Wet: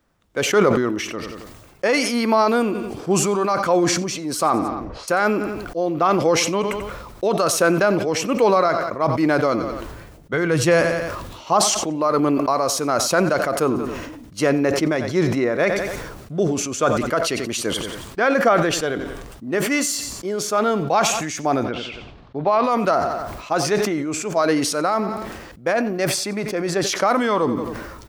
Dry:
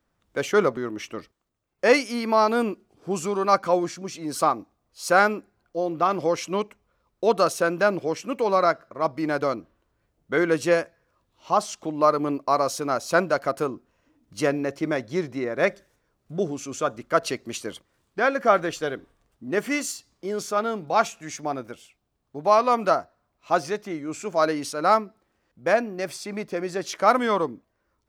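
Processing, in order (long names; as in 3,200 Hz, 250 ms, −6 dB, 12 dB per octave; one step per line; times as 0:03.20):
brickwall limiter −14 dBFS, peak gain reduction 9.5 dB
amplitude tremolo 1.3 Hz, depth 40%
0:04.48–0:05.08: low-pass that shuts in the quiet parts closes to 860 Hz, open at −24.5 dBFS
0:10.33–0:10.81: low shelf with overshoot 170 Hz +8.5 dB, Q 1.5
0:21.63–0:22.64: low-pass filter 4,200 Hz 24 dB per octave
repeating echo 90 ms, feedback 33%, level −19 dB
level that may fall only so fast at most 40 dB per second
level +7.5 dB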